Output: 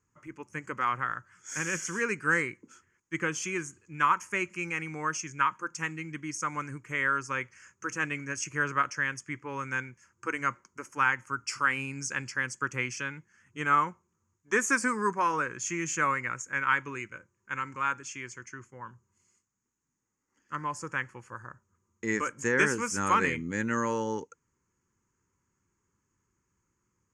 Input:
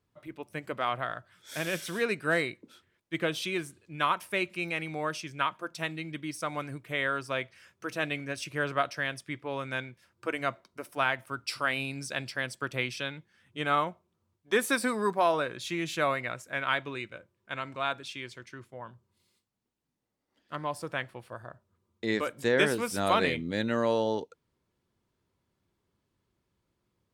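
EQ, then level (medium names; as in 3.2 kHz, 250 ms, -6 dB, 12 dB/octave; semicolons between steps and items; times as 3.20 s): resonant low-pass 6.7 kHz, resonance Q 11; peaking EQ 840 Hz +7 dB 1.8 oct; static phaser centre 1.6 kHz, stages 4; 0.0 dB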